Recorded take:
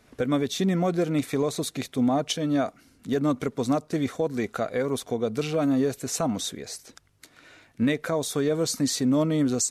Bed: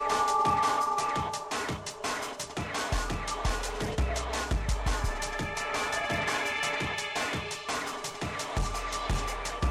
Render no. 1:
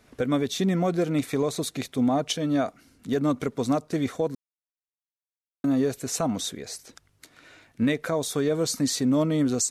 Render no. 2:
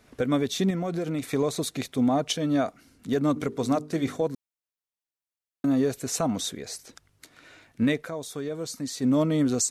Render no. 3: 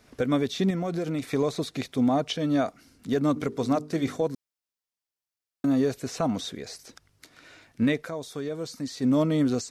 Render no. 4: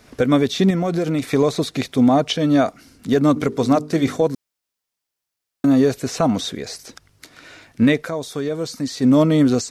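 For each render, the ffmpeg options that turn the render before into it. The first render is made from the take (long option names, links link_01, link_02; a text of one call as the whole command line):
ffmpeg -i in.wav -filter_complex "[0:a]asplit=3[link_01][link_02][link_03];[link_01]atrim=end=4.35,asetpts=PTS-STARTPTS,afade=type=out:start_time=4.346:duration=0.004:curve=hsin[link_04];[link_02]atrim=start=4.35:end=5.64,asetpts=PTS-STARTPTS,volume=0[link_05];[link_03]atrim=start=5.64,asetpts=PTS-STARTPTS,afade=type=in:duration=0.004:curve=hsin[link_06];[link_04][link_05][link_06]concat=n=3:v=0:a=1" out.wav
ffmpeg -i in.wav -filter_complex "[0:a]asettb=1/sr,asplit=3[link_01][link_02][link_03];[link_01]atrim=end=0.704[link_04];[link_02]atrim=start=0.7:end=1.3,asetpts=PTS-STARTPTS,afade=type=in:duration=0.004:curve=qsin,afade=type=out:start_time=0.596:duration=0.004:curve=qsin,acompressor=threshold=-25dB:ratio=6:attack=3.2:release=140:knee=1:detection=peak[link_05];[link_03]atrim=start=1.296[link_06];[link_04][link_05]acrossfade=duration=0.004:curve1=hsin:curve2=qsin[link_07];[link_07][link_06]acrossfade=duration=0.004:curve1=qsin:curve2=hsin,asplit=3[link_08][link_09][link_10];[link_08]afade=type=out:start_time=3.35:duration=0.02[link_11];[link_09]bandreject=frequency=50:width_type=h:width=6,bandreject=frequency=100:width_type=h:width=6,bandreject=frequency=150:width_type=h:width=6,bandreject=frequency=200:width_type=h:width=6,bandreject=frequency=250:width_type=h:width=6,bandreject=frequency=300:width_type=h:width=6,bandreject=frequency=350:width_type=h:width=6,bandreject=frequency=400:width_type=h:width=6,bandreject=frequency=450:width_type=h:width=6,afade=type=in:start_time=3.35:duration=0.02,afade=type=out:start_time=4.26:duration=0.02[link_12];[link_10]afade=type=in:start_time=4.26:duration=0.02[link_13];[link_11][link_12][link_13]amix=inputs=3:normalize=0,asplit=3[link_14][link_15][link_16];[link_14]atrim=end=8.25,asetpts=PTS-STARTPTS,afade=type=out:start_time=8.01:duration=0.24:curve=exp:silence=0.398107[link_17];[link_15]atrim=start=8.25:end=8.8,asetpts=PTS-STARTPTS,volume=-8dB[link_18];[link_16]atrim=start=8.8,asetpts=PTS-STARTPTS,afade=type=in:duration=0.24:curve=exp:silence=0.398107[link_19];[link_17][link_18][link_19]concat=n=3:v=0:a=1" out.wav
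ffmpeg -i in.wav -filter_complex "[0:a]acrossover=split=4000[link_01][link_02];[link_02]acompressor=threshold=-45dB:ratio=4:attack=1:release=60[link_03];[link_01][link_03]amix=inputs=2:normalize=0,equalizer=frequency=5100:width=2.7:gain=4" out.wav
ffmpeg -i in.wav -af "volume=8.5dB" out.wav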